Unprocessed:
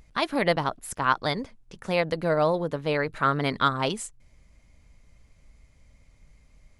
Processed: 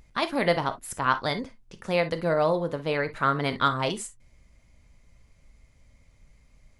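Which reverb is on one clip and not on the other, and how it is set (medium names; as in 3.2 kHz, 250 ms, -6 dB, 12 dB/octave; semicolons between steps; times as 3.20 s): gated-style reverb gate 80 ms flat, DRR 9.5 dB; trim -1 dB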